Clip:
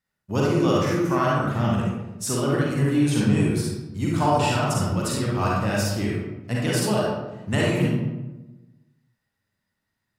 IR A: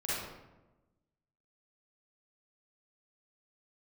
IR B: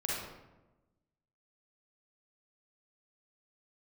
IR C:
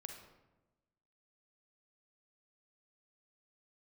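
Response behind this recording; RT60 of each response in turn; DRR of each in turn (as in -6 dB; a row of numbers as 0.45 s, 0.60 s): B; 1.1 s, 1.1 s, 1.1 s; -10.0 dB, -5.5 dB, 3.5 dB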